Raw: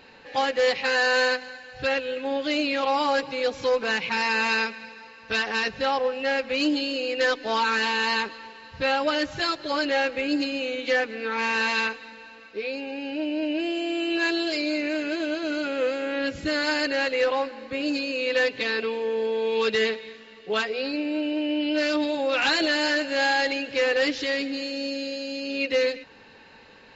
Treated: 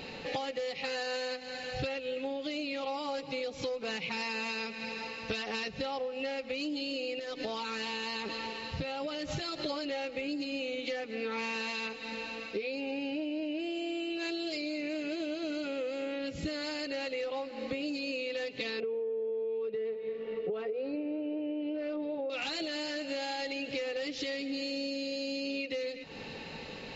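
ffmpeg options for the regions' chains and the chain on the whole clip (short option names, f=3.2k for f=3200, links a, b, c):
-filter_complex "[0:a]asettb=1/sr,asplit=3[a][b][c];[a]atrim=end=7.194[d];[b]atrim=start=7.19:end=9.66,asetpts=PTS-STARTPTS,afade=t=in:d=0.004:c=qsin,afade=t=out:st=2.466:d=0.004:c=qsin,acompressor=threshold=-32dB:ratio=16:attack=3.2:release=140:knee=1:detection=peak,tremolo=f=120:d=0.182[e];[c]atrim=start=9.656[f];[d][e]acrossfade=d=0.004:c1=hsin:c2=qsin[g];[g][f]acrossfade=d=0.004:c1=qsin:c2=hsin,asettb=1/sr,asplit=3[h][i][j];[h]atrim=end=18.804[k];[i]atrim=start=18.8:end=22.3,asetpts=PTS-STARTPTS,afade=t=in:d=0.004:c=qsin,afade=t=out:st=3.496:d=0.004:c=qsin,lowpass=1.6k,equalizer=f=460:t=o:w=0.36:g=11.5[l];[j]atrim=start=22.296[m];[k][l]acrossfade=d=0.004:c1=hsin:c2=qsin[n];[n][m]acrossfade=d=0.004:c1=qsin:c2=hsin,equalizer=f=160:t=o:w=0.33:g=7,equalizer=f=1k:t=o:w=0.33:g=-8,equalizer=f=1.6k:t=o:w=0.33:g=-12,alimiter=limit=-19.5dB:level=0:latency=1:release=177,acompressor=threshold=-41dB:ratio=16,volume=8.5dB"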